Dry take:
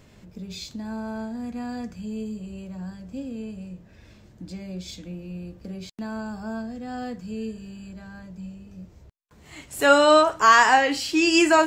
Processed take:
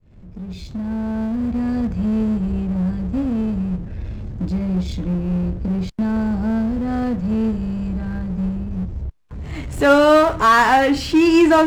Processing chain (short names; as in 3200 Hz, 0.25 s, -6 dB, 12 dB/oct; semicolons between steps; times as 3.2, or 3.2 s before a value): opening faded in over 1.96 s; RIAA curve playback; power-law curve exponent 0.7